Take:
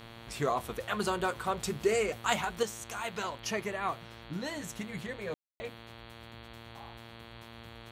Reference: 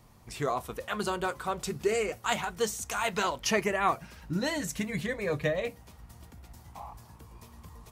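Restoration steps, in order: de-hum 115.1 Hz, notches 39; notch 3300 Hz, Q 30; room tone fill 5.34–5.6; gain correction +7 dB, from 2.63

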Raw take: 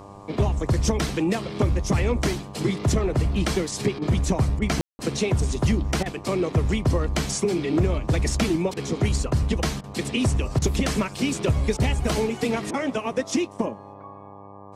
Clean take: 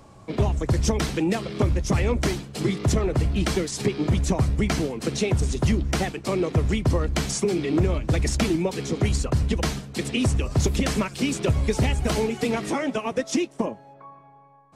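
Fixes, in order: de-hum 99.7 Hz, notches 12; room tone fill 4.81–4.99; interpolate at 3.99/4.59/6.03/8.74/9.81/10.59/11.77/12.71, 27 ms

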